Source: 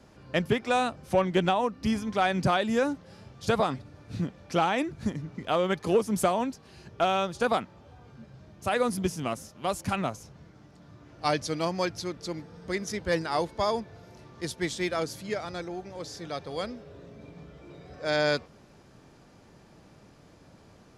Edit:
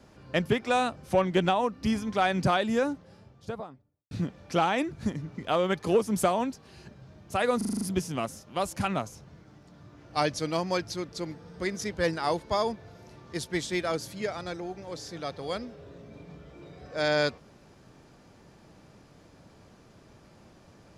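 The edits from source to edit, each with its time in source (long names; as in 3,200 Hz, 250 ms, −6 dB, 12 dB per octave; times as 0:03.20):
0:02.54–0:04.11: fade out and dull
0:06.91–0:08.23: remove
0:08.89: stutter 0.04 s, 7 plays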